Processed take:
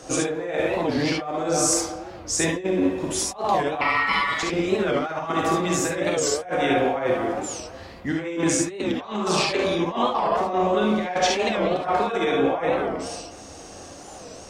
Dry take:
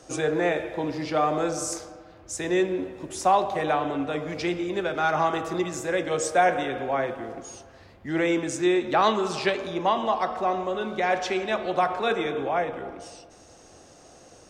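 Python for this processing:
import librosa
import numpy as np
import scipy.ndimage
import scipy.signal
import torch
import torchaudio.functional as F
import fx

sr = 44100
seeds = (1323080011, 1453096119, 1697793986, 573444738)

y = fx.ring_mod(x, sr, carrier_hz=1600.0, at=(3.81, 4.43))
y = fx.over_compress(y, sr, threshold_db=-29.0, ratio=-0.5)
y = fx.hum_notches(y, sr, base_hz=50, count=3)
y = fx.rev_gated(y, sr, seeds[0], gate_ms=90, shape='rising', drr_db=0.0)
y = fx.record_warp(y, sr, rpm=45.0, depth_cents=160.0)
y = F.gain(torch.from_numpy(y), 3.5).numpy()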